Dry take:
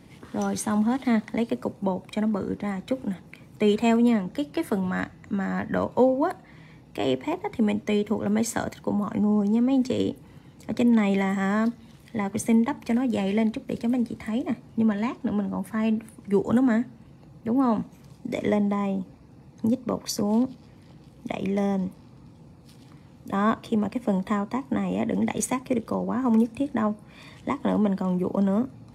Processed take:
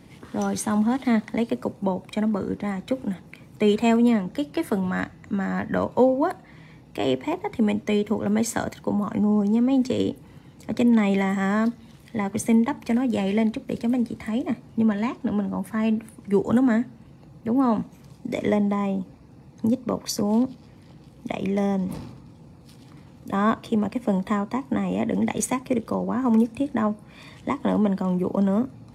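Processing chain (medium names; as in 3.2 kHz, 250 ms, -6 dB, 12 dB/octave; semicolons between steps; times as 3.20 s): 21.86–23.36 s: decay stretcher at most 52 dB/s; trim +1.5 dB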